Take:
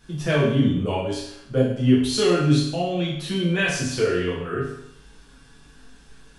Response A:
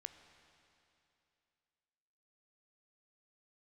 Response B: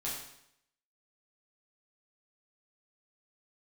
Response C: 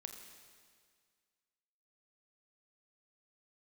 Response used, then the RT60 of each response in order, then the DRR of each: B; 2.8, 0.75, 1.9 s; 8.5, -7.5, 4.0 dB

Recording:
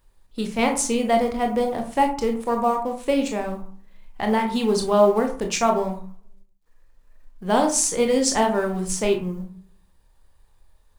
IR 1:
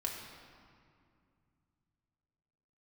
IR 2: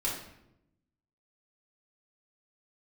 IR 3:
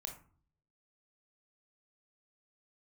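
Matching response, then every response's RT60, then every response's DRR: 3; 2.3, 0.85, 0.45 s; -1.5, -6.0, 3.0 dB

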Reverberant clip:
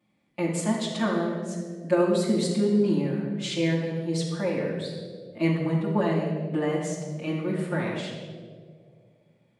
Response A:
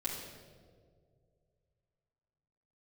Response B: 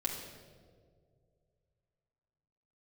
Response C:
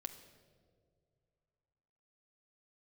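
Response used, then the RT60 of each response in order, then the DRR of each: A; 2.1, 2.1, 2.4 s; -8.0, -3.0, 6.5 dB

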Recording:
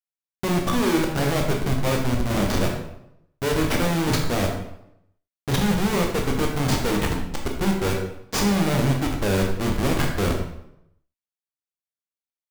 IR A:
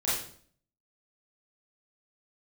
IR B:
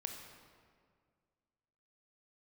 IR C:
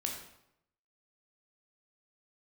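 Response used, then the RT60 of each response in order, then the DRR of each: C; 0.55, 2.0, 0.80 s; -10.0, 3.0, 0.5 dB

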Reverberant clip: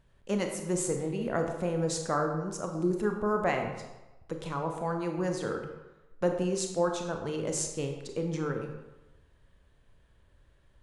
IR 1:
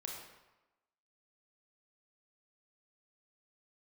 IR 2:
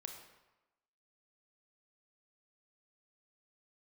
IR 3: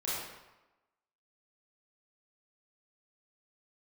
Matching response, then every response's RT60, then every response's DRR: 2; 1.0, 1.0, 1.0 s; -1.0, 3.5, -9.5 dB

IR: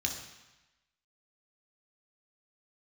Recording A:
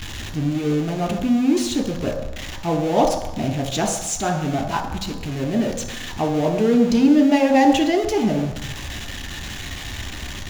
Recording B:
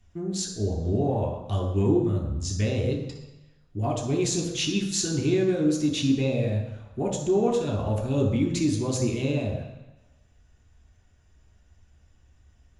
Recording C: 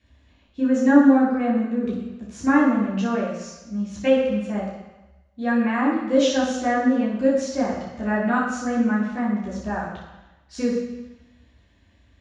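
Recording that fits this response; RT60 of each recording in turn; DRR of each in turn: B; 1.0, 1.0, 1.0 s; 5.0, 1.0, -8.5 dB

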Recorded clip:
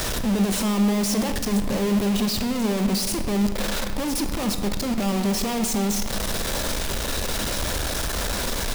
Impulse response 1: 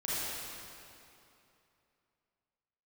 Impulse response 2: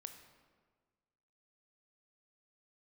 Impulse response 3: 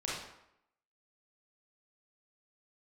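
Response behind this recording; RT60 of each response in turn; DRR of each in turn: 2; 2.8, 1.5, 0.80 s; -10.0, 6.5, -6.5 dB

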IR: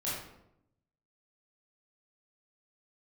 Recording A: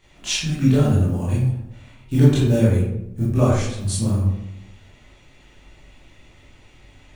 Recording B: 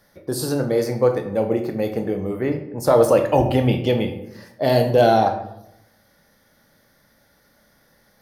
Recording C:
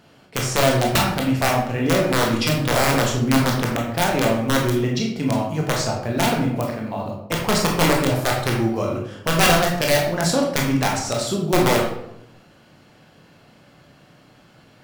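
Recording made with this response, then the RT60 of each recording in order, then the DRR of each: A; 0.80, 0.80, 0.80 s; -9.5, 5.5, -1.5 dB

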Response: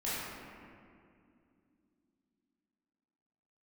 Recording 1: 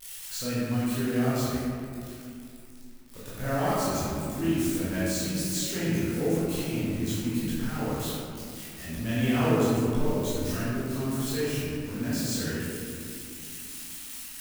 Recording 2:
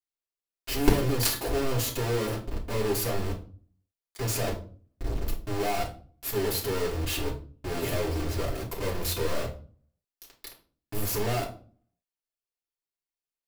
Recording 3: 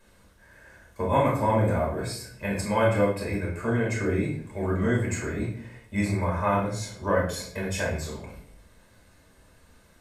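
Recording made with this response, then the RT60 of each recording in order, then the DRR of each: 1; 2.5, 0.40, 0.65 s; -11.0, -4.5, -5.0 dB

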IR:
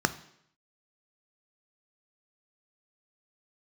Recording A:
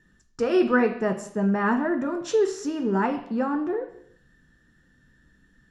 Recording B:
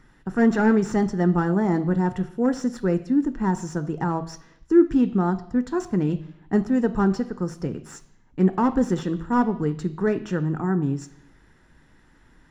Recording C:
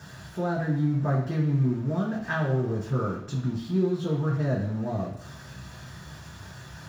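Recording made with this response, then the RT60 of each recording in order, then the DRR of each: B; 0.70, 0.70, 0.70 s; 5.0, 10.5, -4.0 dB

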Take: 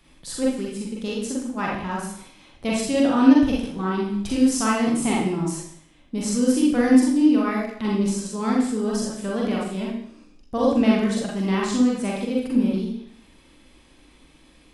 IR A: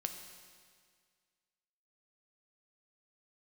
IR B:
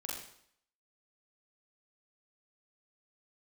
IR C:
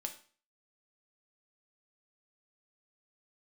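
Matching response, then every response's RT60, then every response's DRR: B; 1.9, 0.65, 0.40 s; 5.5, -4.5, 4.0 dB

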